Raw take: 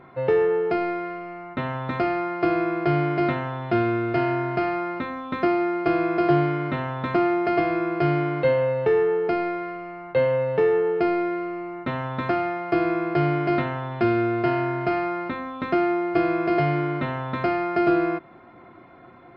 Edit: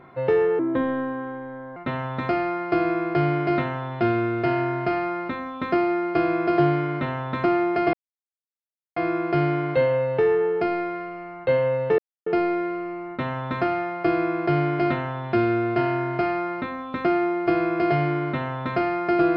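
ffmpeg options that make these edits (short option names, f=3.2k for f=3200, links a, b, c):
-filter_complex "[0:a]asplit=6[a][b][c][d][e][f];[a]atrim=end=0.594[g];[b]atrim=start=0.59:end=1.47,asetpts=PTS-STARTPTS,asetrate=33075,aresample=44100[h];[c]atrim=start=1.466:end=7.64,asetpts=PTS-STARTPTS,afade=t=out:st=6.17:d=0.004:c=hsin,apad=pad_dur=1.03[i];[d]atrim=start=7.64:end=10.66,asetpts=PTS-STARTPTS,afade=t=in:d=0.004:c=hsin,afade=t=out:st=3.016:d=0.004:c=hsin[j];[e]atrim=start=10.66:end=10.94,asetpts=PTS-STARTPTS,volume=0[k];[f]atrim=start=10.94,asetpts=PTS-STARTPTS,afade=t=in:d=0.004:c=hsin[l];[g][h]acrossfade=d=0.004:c1=hsin:c2=hsin[m];[i][j][k][l]concat=n=4:v=0:a=1[n];[m][n]acrossfade=d=0.004:c1=hsin:c2=hsin"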